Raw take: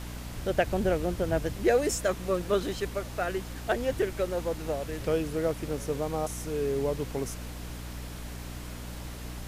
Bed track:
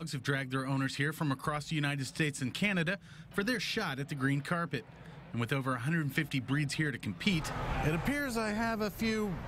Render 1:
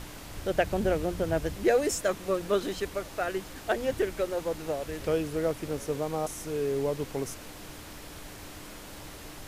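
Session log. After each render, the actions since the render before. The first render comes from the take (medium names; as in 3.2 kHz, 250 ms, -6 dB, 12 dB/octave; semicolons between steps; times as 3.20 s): hum notches 60/120/180/240 Hz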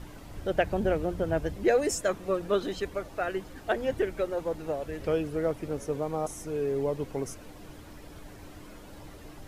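noise reduction 10 dB, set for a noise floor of -45 dBFS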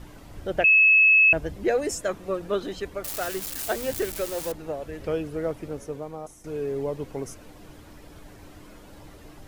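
0.64–1.33 s: bleep 2.59 kHz -13 dBFS; 3.04–4.52 s: zero-crossing glitches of -22 dBFS; 5.61–6.44 s: fade out, to -11.5 dB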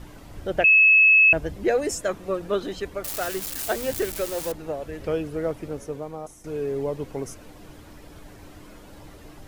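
trim +1.5 dB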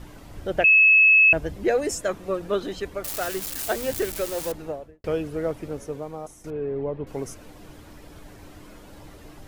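4.61–5.04 s: studio fade out; 6.50–7.07 s: distance through air 470 m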